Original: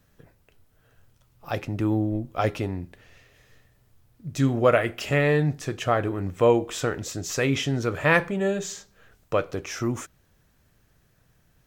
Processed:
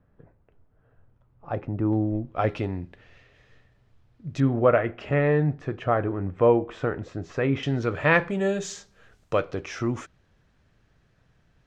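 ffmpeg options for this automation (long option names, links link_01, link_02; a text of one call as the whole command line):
ffmpeg -i in.wav -af "asetnsamples=nb_out_samples=441:pad=0,asendcmd='1.93 lowpass f 2300;2.49 lowpass f 3800;4.4 lowpass f 1700;7.63 lowpass f 3800;8.3 lowpass f 7700;9.4 lowpass f 4300',lowpass=1200" out.wav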